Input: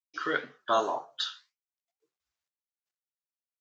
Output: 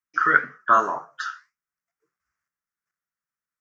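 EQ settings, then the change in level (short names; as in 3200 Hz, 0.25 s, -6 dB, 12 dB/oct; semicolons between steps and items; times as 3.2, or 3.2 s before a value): EQ curve 110 Hz 0 dB, 170 Hz +6 dB, 270 Hz -2 dB, 430 Hz -4 dB, 810 Hz -6 dB, 1300 Hz +10 dB, 1900 Hz +6 dB, 3700 Hz -20 dB, 5500 Hz -3 dB, 8800 Hz -7 dB; +5.5 dB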